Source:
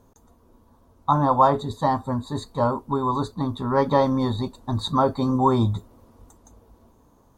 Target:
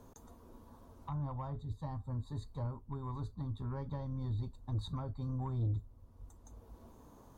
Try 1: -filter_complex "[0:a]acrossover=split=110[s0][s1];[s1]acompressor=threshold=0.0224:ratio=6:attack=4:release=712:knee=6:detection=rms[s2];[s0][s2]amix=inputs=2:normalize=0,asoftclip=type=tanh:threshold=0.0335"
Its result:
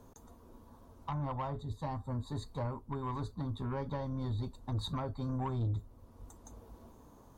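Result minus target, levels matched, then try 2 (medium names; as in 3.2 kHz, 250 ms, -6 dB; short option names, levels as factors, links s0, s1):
compression: peak gain reduction -8.5 dB
-filter_complex "[0:a]acrossover=split=110[s0][s1];[s1]acompressor=threshold=0.00708:ratio=6:attack=4:release=712:knee=6:detection=rms[s2];[s0][s2]amix=inputs=2:normalize=0,asoftclip=type=tanh:threshold=0.0335"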